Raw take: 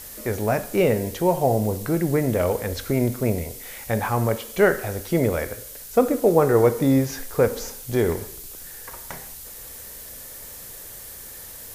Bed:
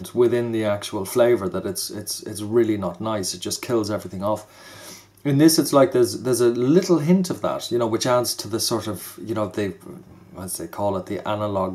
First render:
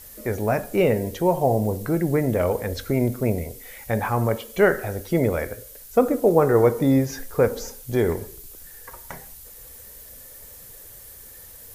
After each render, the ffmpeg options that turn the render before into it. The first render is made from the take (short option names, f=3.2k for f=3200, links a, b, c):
-af "afftdn=nr=7:nf=-40"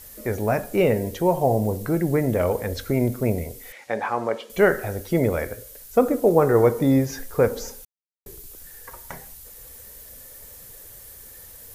-filter_complex "[0:a]asettb=1/sr,asplit=3[a][b][c];[a]atrim=end=3.724[d];[b]atrim=start=3.72:end=4.5,asetpts=PTS-STARTPTS,afade=t=in:d=0.004:c=qsin,afade=t=out:st=0.776:d=0.004:c=qsin,highpass=320,lowpass=5.3k[e];[c]atrim=start=4.496[f];[d][e]acrossfade=d=0.004:c1=hsin:c2=qsin[g];[g][f]acrossfade=d=0.004:c1=qsin:c2=hsin,asplit=3[h][i][j];[h]atrim=end=7.85,asetpts=PTS-STARTPTS,afade=t=out:st=7.846:d=0.004:c=hsin[k];[i]atrim=start=7.85:end=8.26,asetpts=PTS-STARTPTS,volume=0[l];[j]atrim=start=8.26,asetpts=PTS-STARTPTS,afade=t=in:d=0.004:c=hsin[m];[k][l][m]concat=n=3:v=0:a=1"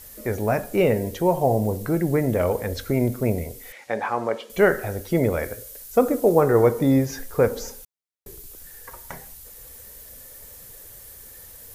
-filter_complex "[0:a]asettb=1/sr,asplit=3[a][b][c];[a]atrim=end=5.434[d];[b]atrim=start=5.43:end=6.41,asetpts=PTS-STARTPTS,afade=t=in:d=0.004:c=qsin,afade=t=out:st=0.976:d=0.004:c=qsin,bass=f=250:g=-1,treble=f=4k:g=3[e];[c]atrim=start=6.406[f];[d][e]acrossfade=d=0.004:c1=hsin:c2=qsin[g];[g][f]acrossfade=d=0.004:c1=qsin:c2=hsin"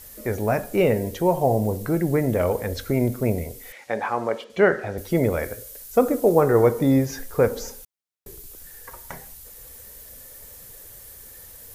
-filter_complex "[0:a]asettb=1/sr,asplit=3[a][b][c];[a]atrim=end=4.444[d];[b]atrim=start=4.44:end=4.98,asetpts=PTS-STARTPTS,afade=t=in:d=0.004:c=qsin,afade=t=out:st=0.536:d=0.004:c=qsin,highpass=110,lowpass=4.5k[e];[c]atrim=start=4.976[f];[d][e]acrossfade=d=0.004:c1=hsin:c2=qsin[g];[g][f]acrossfade=d=0.004:c1=qsin:c2=hsin"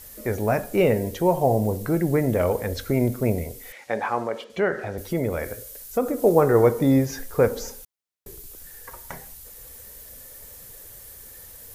-filter_complex "[0:a]asettb=1/sr,asplit=3[a][b][c];[a]atrim=end=4.224[d];[b]atrim=start=4.22:end=6.2,asetpts=PTS-STARTPTS,afade=t=in:d=0.004:c=qsin,afade=t=out:st=1.976:d=0.004:c=qsin,acompressor=threshold=-27dB:ratio=1.5:attack=3.2:release=140:knee=1:detection=peak[e];[c]atrim=start=6.196[f];[d][e]acrossfade=d=0.004:c1=hsin:c2=qsin[g];[g][f]acrossfade=d=0.004:c1=qsin:c2=hsin"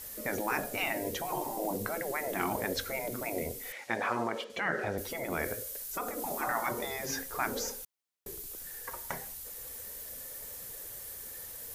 -af "afftfilt=real='re*lt(hypot(re,im),0.224)':imag='im*lt(hypot(re,im),0.224)':win_size=1024:overlap=0.75,lowshelf=f=130:g=-9.5"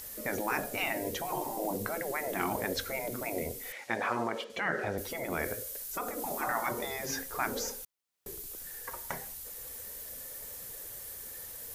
-af "acompressor=mode=upward:threshold=-52dB:ratio=2.5"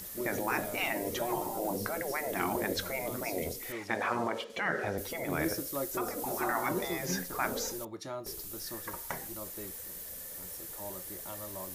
-filter_complex "[1:a]volume=-21dB[a];[0:a][a]amix=inputs=2:normalize=0"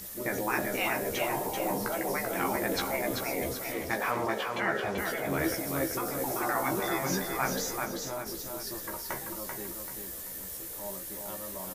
-filter_complex "[0:a]asplit=2[a][b];[b]adelay=15,volume=-4dB[c];[a][c]amix=inputs=2:normalize=0,asplit=2[d][e];[e]aecho=0:1:387|774|1161|1548|1935:0.596|0.232|0.0906|0.0353|0.0138[f];[d][f]amix=inputs=2:normalize=0"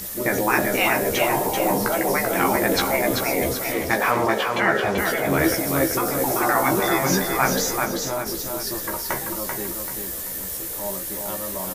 -af "volume=10dB"